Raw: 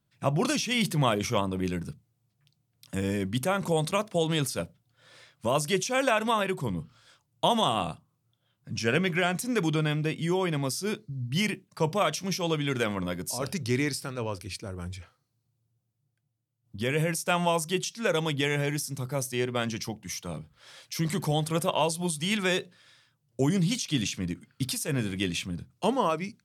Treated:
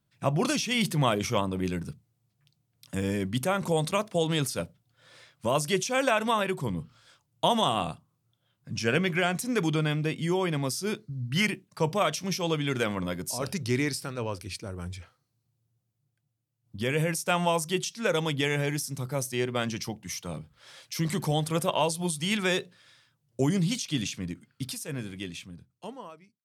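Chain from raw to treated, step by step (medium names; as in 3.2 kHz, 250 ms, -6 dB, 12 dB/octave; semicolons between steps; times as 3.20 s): fade out at the end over 3.04 s; 10.98–11.45 s: peaking EQ 1.5 kHz +3 dB -> +14 dB 0.71 oct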